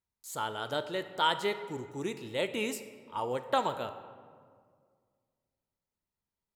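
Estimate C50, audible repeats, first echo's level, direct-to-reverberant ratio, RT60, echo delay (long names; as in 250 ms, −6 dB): 11.5 dB, no echo audible, no echo audible, 10.0 dB, 2.0 s, no echo audible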